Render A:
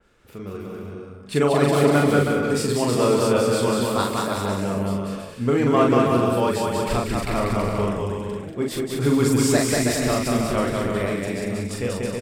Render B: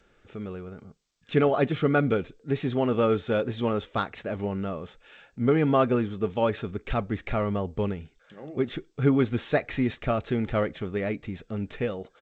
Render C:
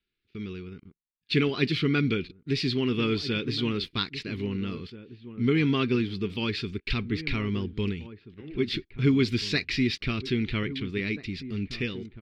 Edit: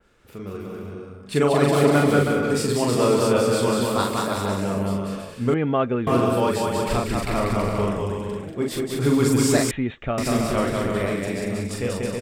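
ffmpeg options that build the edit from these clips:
-filter_complex "[1:a]asplit=2[a][b];[0:a]asplit=3[c][d][e];[c]atrim=end=5.542[f];[a]atrim=start=5.538:end=6.072[g];[d]atrim=start=6.068:end=9.712[h];[b]atrim=start=9.708:end=10.182[i];[e]atrim=start=10.178[j];[f][g]acrossfade=d=0.004:c1=hsin:c2=hsin[k];[k][h]acrossfade=d=0.004:c1=hsin:c2=hsin[l];[l][i]acrossfade=d=0.004:c1=hsin:c2=hsin[m];[m][j]acrossfade=d=0.004:c1=hsin:c2=hsin"

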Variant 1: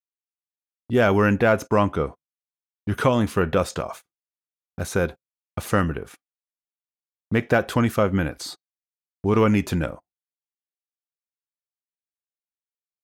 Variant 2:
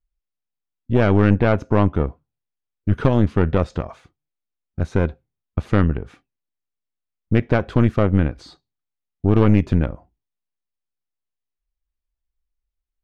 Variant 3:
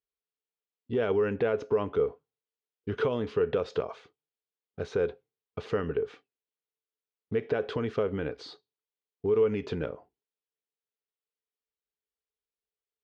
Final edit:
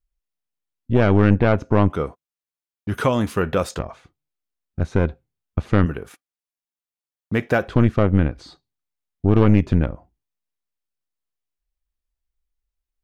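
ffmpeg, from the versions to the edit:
-filter_complex "[0:a]asplit=2[a][b];[1:a]asplit=3[c][d][e];[c]atrim=end=1.902[f];[a]atrim=start=1.898:end=3.792[g];[d]atrim=start=3.788:end=5.862[h];[b]atrim=start=5.858:end=7.682[i];[e]atrim=start=7.678[j];[f][g]acrossfade=d=0.004:c1=hsin:c2=hsin[k];[k][h]acrossfade=d=0.004:c1=hsin:c2=hsin[l];[l][i]acrossfade=d=0.004:c1=hsin:c2=hsin[m];[m][j]acrossfade=d=0.004:c1=hsin:c2=hsin"

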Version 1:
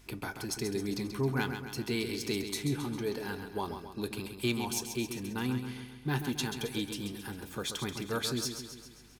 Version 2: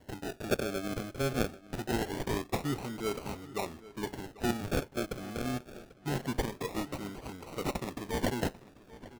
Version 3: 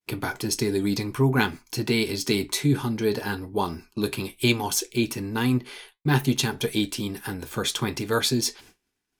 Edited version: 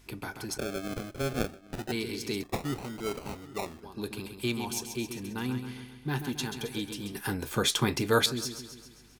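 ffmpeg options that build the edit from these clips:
-filter_complex "[1:a]asplit=2[a][b];[0:a]asplit=4[c][d][e][f];[c]atrim=end=0.582[g];[a]atrim=start=0.578:end=1.922[h];[d]atrim=start=1.918:end=2.432[i];[b]atrim=start=2.428:end=3.832[j];[e]atrim=start=3.828:end=7.152[k];[2:a]atrim=start=7.148:end=8.262[l];[f]atrim=start=8.258[m];[g][h]acrossfade=d=0.004:c1=hsin:c2=hsin[n];[n][i]acrossfade=d=0.004:c1=hsin:c2=hsin[o];[o][j]acrossfade=d=0.004:c1=hsin:c2=hsin[p];[p][k]acrossfade=d=0.004:c1=hsin:c2=hsin[q];[q][l]acrossfade=d=0.004:c1=hsin:c2=hsin[r];[r][m]acrossfade=d=0.004:c1=hsin:c2=hsin"

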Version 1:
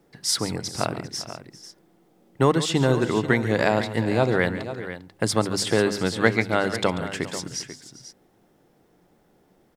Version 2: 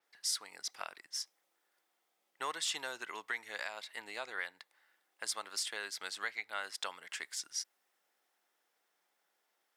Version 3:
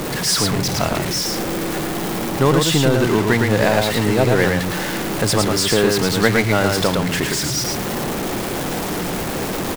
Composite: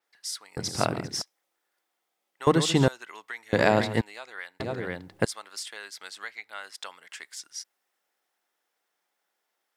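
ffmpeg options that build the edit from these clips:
-filter_complex "[0:a]asplit=4[a][b][c][d];[1:a]asplit=5[e][f][g][h][i];[e]atrim=end=0.572[j];[a]atrim=start=0.568:end=1.222[k];[f]atrim=start=1.218:end=2.472[l];[b]atrim=start=2.468:end=2.882[m];[g]atrim=start=2.878:end=3.532[n];[c]atrim=start=3.528:end=4.012[o];[h]atrim=start=4.008:end=4.602[p];[d]atrim=start=4.598:end=5.252[q];[i]atrim=start=5.248[r];[j][k]acrossfade=d=0.004:c1=hsin:c2=hsin[s];[s][l]acrossfade=d=0.004:c1=hsin:c2=hsin[t];[t][m]acrossfade=d=0.004:c1=hsin:c2=hsin[u];[u][n]acrossfade=d=0.004:c1=hsin:c2=hsin[v];[v][o]acrossfade=d=0.004:c1=hsin:c2=hsin[w];[w][p]acrossfade=d=0.004:c1=hsin:c2=hsin[x];[x][q]acrossfade=d=0.004:c1=hsin:c2=hsin[y];[y][r]acrossfade=d=0.004:c1=hsin:c2=hsin"

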